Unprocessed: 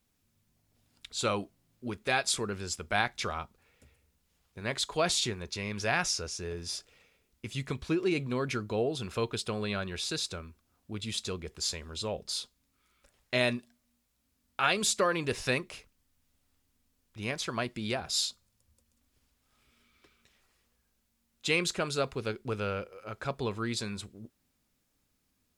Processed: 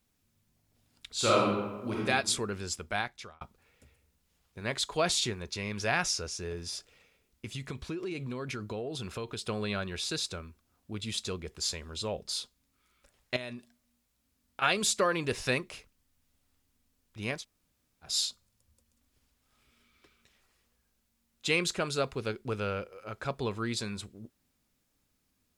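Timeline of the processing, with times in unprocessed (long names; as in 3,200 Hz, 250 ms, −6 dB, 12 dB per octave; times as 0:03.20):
0:01.13–0:01.99: thrown reverb, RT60 1.2 s, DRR −5 dB
0:02.73–0:03.41: fade out
0:06.60–0:09.42: downward compressor, threshold −33 dBFS
0:13.36–0:14.62: downward compressor, threshold −37 dBFS
0:17.40–0:18.06: fill with room tone, crossfade 0.10 s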